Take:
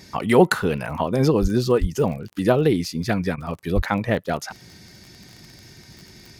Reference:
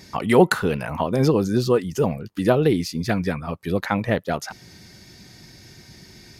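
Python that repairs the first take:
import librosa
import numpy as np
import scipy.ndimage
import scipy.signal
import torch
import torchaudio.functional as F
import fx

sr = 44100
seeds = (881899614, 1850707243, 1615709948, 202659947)

y = fx.fix_declick_ar(x, sr, threshold=6.5)
y = fx.highpass(y, sr, hz=140.0, slope=24, at=(1.41, 1.53), fade=0.02)
y = fx.highpass(y, sr, hz=140.0, slope=24, at=(1.8, 1.92), fade=0.02)
y = fx.highpass(y, sr, hz=140.0, slope=24, at=(3.75, 3.87), fade=0.02)
y = fx.fix_interpolate(y, sr, at_s=(2.3, 3.36), length_ms=17.0)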